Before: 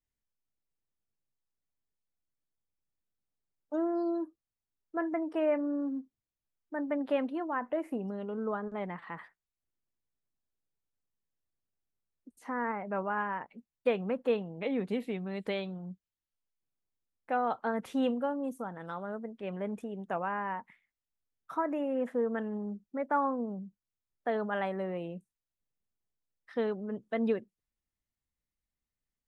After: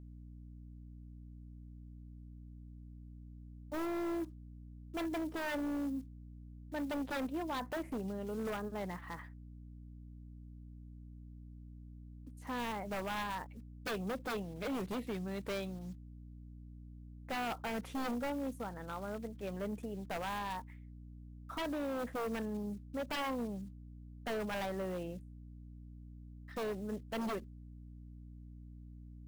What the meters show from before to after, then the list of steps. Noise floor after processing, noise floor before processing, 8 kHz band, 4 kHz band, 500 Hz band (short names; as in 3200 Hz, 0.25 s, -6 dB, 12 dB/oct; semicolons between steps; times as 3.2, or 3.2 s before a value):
-52 dBFS, under -85 dBFS, n/a, +3.5 dB, -7.5 dB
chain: block floating point 5-bit; hum 60 Hz, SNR 12 dB; wavefolder -29 dBFS; gain -3 dB